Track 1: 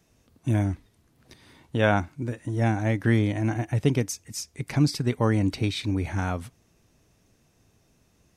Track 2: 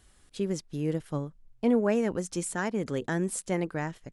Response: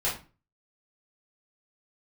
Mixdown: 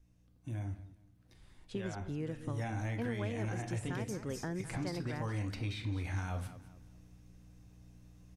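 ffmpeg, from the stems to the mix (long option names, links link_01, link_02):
-filter_complex "[0:a]bandreject=frequency=420:width=12,alimiter=limit=-18dB:level=0:latency=1,aeval=exprs='val(0)+0.00251*(sin(2*PI*60*n/s)+sin(2*PI*2*60*n/s)/2+sin(2*PI*3*60*n/s)/3+sin(2*PI*4*60*n/s)/4+sin(2*PI*5*60*n/s)/5)':channel_layout=same,volume=-7.5dB,afade=type=in:start_time=2.31:duration=0.28:silence=0.316228,asplit=3[link_01][link_02][link_03];[link_02]volume=-11.5dB[link_04];[link_03]volume=-15.5dB[link_05];[1:a]lowpass=frequency=4000:poles=1,adelay=1350,volume=-5.5dB,asplit=2[link_06][link_07];[link_07]volume=-16.5dB[link_08];[2:a]atrim=start_sample=2205[link_09];[link_04][link_09]afir=irnorm=-1:irlink=0[link_10];[link_05][link_08]amix=inputs=2:normalize=0,aecho=0:1:207|414|621|828:1|0.29|0.0841|0.0244[link_11];[link_01][link_06][link_10][link_11]amix=inputs=4:normalize=0,lowshelf=frequency=94:gain=8.5,acrossover=split=810|2400[link_12][link_13][link_14];[link_12]acompressor=threshold=-36dB:ratio=4[link_15];[link_13]acompressor=threshold=-46dB:ratio=4[link_16];[link_14]acompressor=threshold=-51dB:ratio=4[link_17];[link_15][link_16][link_17]amix=inputs=3:normalize=0"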